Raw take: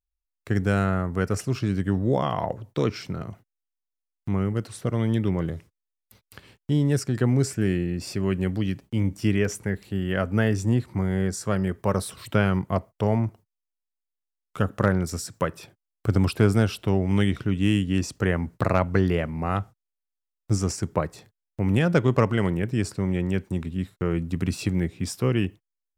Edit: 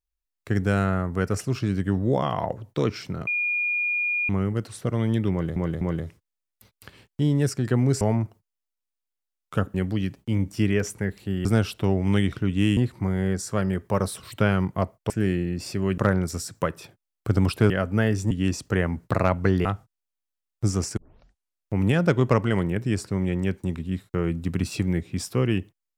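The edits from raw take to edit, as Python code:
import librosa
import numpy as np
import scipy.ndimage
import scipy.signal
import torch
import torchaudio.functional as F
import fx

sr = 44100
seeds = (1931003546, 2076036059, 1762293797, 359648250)

y = fx.edit(x, sr, fx.bleep(start_s=3.27, length_s=1.02, hz=2430.0, db=-22.0),
    fx.repeat(start_s=5.31, length_s=0.25, count=3),
    fx.swap(start_s=7.51, length_s=0.88, other_s=13.04, other_length_s=1.73),
    fx.swap(start_s=10.1, length_s=0.61, other_s=16.49, other_length_s=1.32),
    fx.cut(start_s=19.15, length_s=0.37),
    fx.tape_start(start_s=20.84, length_s=0.76), tone=tone)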